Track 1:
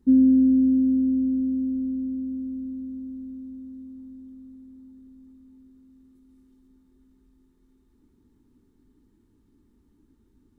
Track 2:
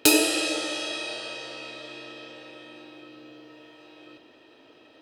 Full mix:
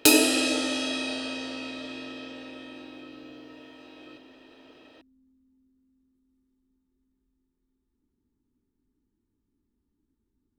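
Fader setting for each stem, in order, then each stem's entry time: -14.5, +0.5 dB; 0.00, 0.00 s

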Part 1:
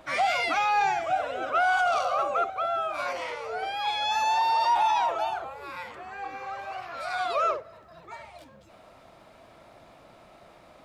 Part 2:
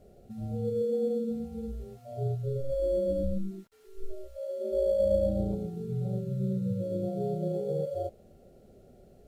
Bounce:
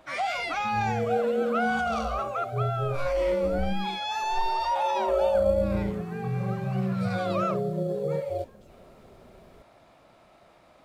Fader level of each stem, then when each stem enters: -4.0, +2.5 dB; 0.00, 0.35 s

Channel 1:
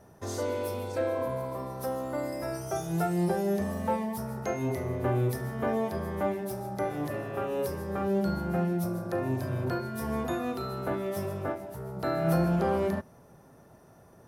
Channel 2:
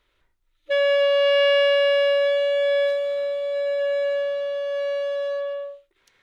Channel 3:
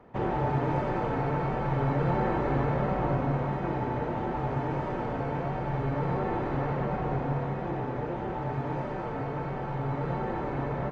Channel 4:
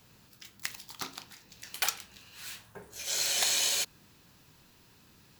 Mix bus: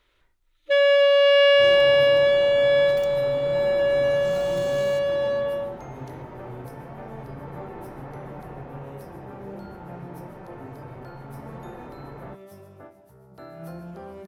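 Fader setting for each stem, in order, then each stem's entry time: -13.0, +2.0, -9.0, -19.0 dB; 1.35, 0.00, 1.45, 1.15 s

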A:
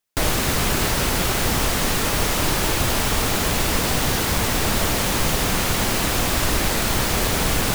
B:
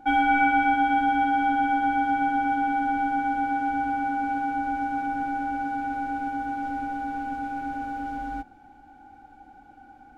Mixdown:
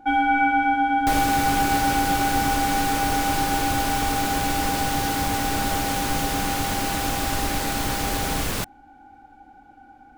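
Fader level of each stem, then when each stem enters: -5.5, +1.0 dB; 0.90, 0.00 s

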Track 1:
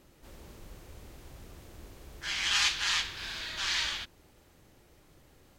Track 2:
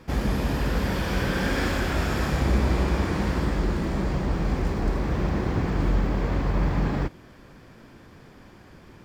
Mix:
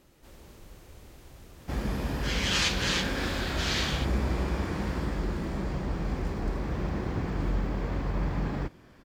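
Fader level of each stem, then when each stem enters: -0.5, -6.0 dB; 0.00, 1.60 s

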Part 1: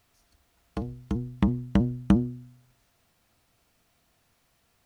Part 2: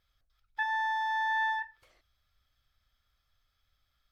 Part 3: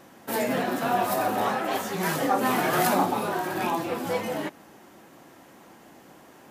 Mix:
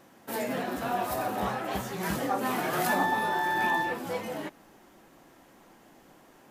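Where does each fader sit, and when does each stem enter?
-15.0, +1.5, -5.5 dB; 0.00, 2.30, 0.00 s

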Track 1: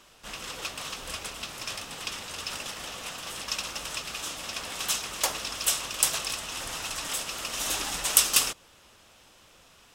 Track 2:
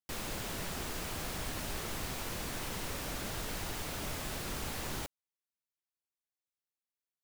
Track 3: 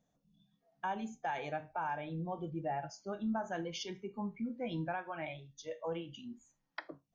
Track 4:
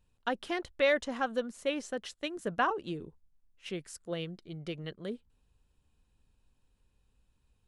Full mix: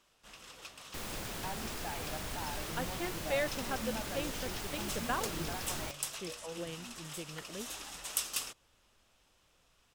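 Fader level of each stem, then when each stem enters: -14.0, -2.0, -6.5, -6.5 dB; 0.00, 0.85, 0.60, 2.50 s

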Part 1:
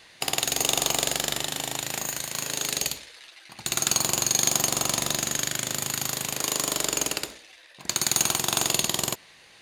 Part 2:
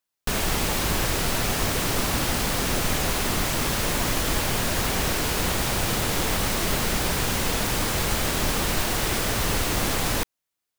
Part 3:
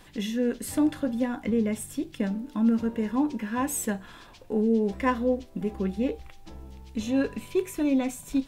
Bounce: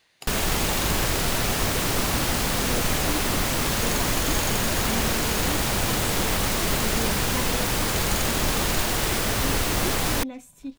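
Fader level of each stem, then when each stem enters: -12.5, +0.5, -10.0 dB; 0.00, 0.00, 2.30 s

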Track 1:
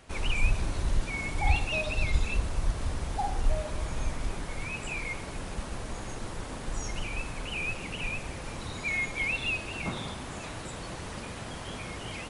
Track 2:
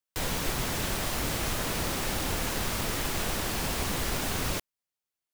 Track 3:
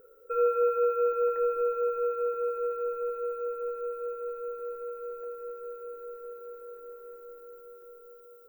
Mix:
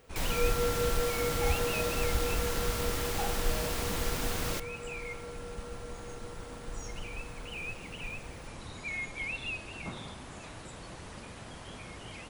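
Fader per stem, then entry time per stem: -6.5, -4.0, -7.0 dB; 0.00, 0.00, 0.00 s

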